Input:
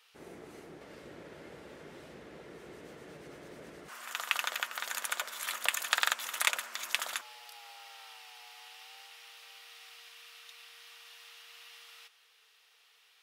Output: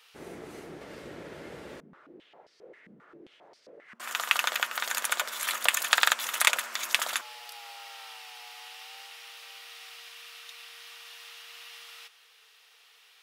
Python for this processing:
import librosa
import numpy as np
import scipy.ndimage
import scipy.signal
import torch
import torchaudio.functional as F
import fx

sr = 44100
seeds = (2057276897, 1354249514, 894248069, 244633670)

y = fx.filter_held_bandpass(x, sr, hz=7.5, low_hz=210.0, high_hz=4900.0, at=(1.8, 4.0))
y = y * 10.0 ** (6.0 / 20.0)